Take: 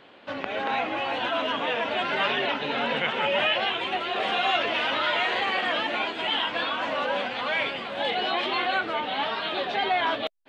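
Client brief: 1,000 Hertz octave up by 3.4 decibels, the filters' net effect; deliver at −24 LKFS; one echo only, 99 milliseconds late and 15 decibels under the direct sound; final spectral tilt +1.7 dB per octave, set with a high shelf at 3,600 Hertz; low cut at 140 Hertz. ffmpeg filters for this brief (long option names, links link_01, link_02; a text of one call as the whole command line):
ffmpeg -i in.wav -af "highpass=140,equalizer=frequency=1000:width_type=o:gain=4,highshelf=frequency=3600:gain=6,aecho=1:1:99:0.178,volume=-1dB" out.wav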